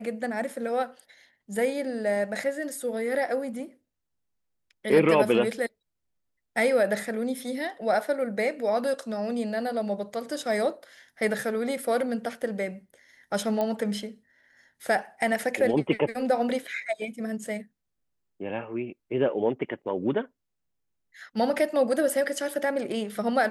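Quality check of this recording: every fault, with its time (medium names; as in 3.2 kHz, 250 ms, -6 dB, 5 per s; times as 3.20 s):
13.61 s: pop -16 dBFS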